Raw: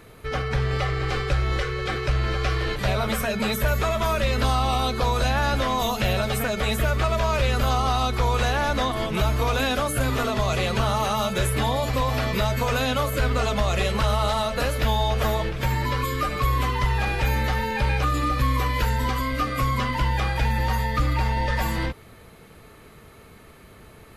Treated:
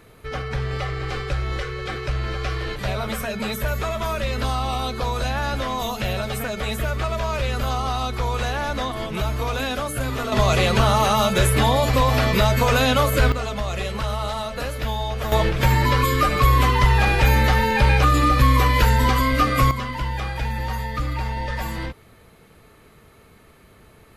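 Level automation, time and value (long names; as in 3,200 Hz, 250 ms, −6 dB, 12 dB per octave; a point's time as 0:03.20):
−2 dB
from 0:10.32 +5.5 dB
from 0:13.32 −3.5 dB
from 0:15.32 +6.5 dB
from 0:19.71 −3 dB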